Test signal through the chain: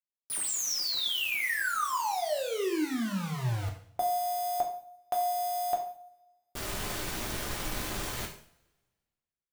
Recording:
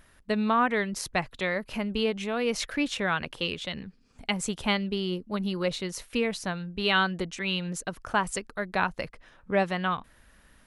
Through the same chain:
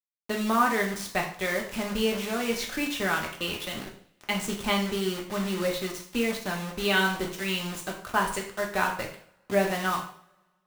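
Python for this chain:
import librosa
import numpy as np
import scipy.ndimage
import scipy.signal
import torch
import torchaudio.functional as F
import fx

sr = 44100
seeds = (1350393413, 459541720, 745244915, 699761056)

y = fx.high_shelf(x, sr, hz=5200.0, db=-5.5)
y = fx.quant_dither(y, sr, seeds[0], bits=6, dither='none')
y = fx.rev_double_slope(y, sr, seeds[1], early_s=0.5, late_s=1.6, knee_db=-25, drr_db=0.0)
y = y * 10.0 ** (-2.0 / 20.0)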